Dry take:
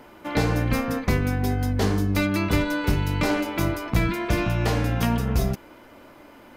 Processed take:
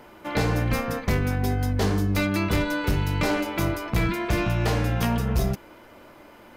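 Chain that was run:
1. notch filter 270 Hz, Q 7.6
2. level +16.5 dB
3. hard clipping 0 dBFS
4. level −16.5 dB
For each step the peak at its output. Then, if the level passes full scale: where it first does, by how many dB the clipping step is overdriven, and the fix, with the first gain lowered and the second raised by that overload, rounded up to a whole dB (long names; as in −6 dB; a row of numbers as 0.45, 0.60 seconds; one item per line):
−9.0, +7.5, 0.0, −16.5 dBFS
step 2, 7.5 dB
step 2 +8.5 dB, step 4 −8.5 dB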